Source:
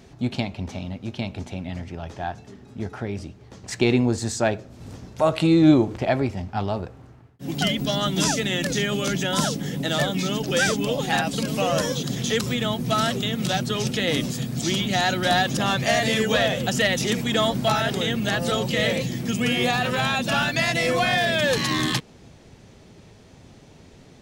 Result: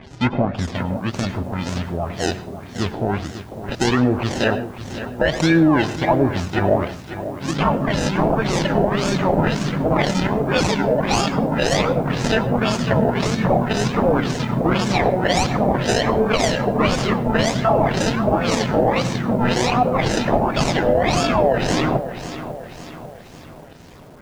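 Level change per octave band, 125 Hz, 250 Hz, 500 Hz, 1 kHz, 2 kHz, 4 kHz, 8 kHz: +5.0, +4.0, +5.5, +6.0, +0.5, -2.0, -0.5 dB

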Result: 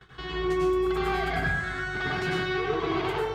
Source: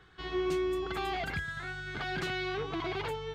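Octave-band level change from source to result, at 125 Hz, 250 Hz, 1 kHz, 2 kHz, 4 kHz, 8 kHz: +7.5, +7.0, +7.0, +7.0, +4.0, +3.5 dB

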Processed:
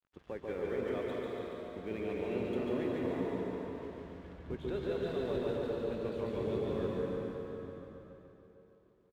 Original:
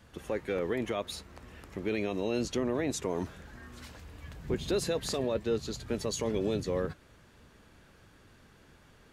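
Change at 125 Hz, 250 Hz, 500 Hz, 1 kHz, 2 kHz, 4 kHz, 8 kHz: -3.5 dB, -3.0 dB, -2.0 dB, -3.5 dB, -5.5 dB, -12.0 dB, under -25 dB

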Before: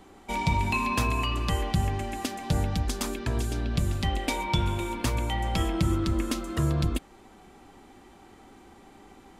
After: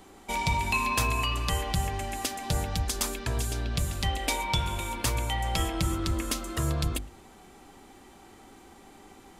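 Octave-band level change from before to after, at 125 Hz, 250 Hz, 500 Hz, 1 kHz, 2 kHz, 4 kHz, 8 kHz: -3.0, -5.5, -2.5, 0.0, +1.5, +2.5, +5.5 dB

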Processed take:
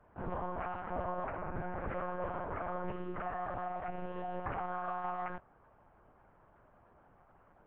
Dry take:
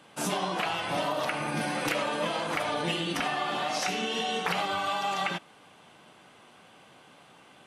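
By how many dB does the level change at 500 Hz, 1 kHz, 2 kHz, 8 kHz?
-7.5 dB, -8.0 dB, -15.0 dB, under -40 dB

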